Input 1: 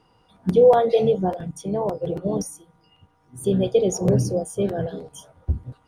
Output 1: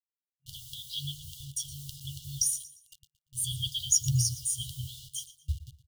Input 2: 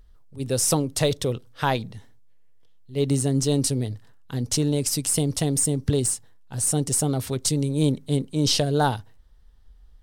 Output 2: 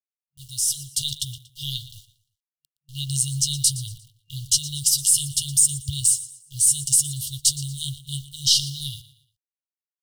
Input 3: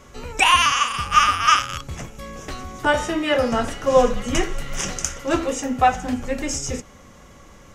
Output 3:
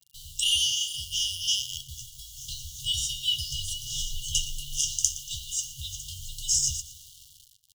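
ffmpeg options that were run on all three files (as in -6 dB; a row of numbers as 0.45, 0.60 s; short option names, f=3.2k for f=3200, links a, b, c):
-filter_complex "[0:a]lowshelf=f=490:g=-11.5,asplit=2[a][b];[b]adelay=13,volume=-12.5dB[c];[a][c]amix=inputs=2:normalize=0,dynaudnorm=f=110:g=17:m=10dB,acrusher=bits=6:mix=0:aa=0.000001,asplit=2[d][e];[e]aecho=0:1:117|234|351:0.15|0.0509|0.0173[f];[d][f]amix=inputs=2:normalize=0,afftfilt=real='re*(1-between(b*sr/4096,140,2800))':imag='im*(1-between(b*sr/4096,140,2800))':win_size=4096:overlap=0.75,volume=-1.5dB"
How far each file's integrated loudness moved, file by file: -9.5, +3.0, -7.5 LU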